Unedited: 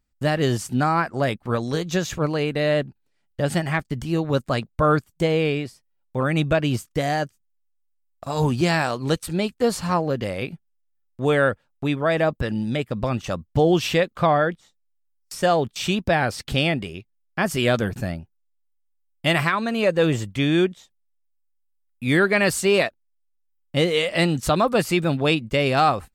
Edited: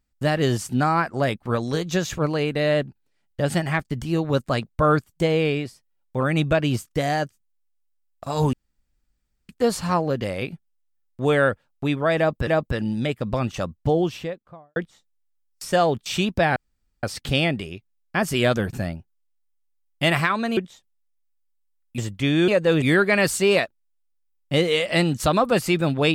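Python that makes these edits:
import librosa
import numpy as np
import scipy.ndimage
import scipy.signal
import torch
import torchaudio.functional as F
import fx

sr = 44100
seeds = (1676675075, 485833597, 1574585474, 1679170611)

y = fx.studio_fade_out(x, sr, start_s=13.23, length_s=1.23)
y = fx.edit(y, sr, fx.room_tone_fill(start_s=8.53, length_s=0.96),
    fx.repeat(start_s=12.17, length_s=0.3, count=2),
    fx.insert_room_tone(at_s=16.26, length_s=0.47),
    fx.swap(start_s=19.8, length_s=0.34, other_s=20.64, other_length_s=1.41), tone=tone)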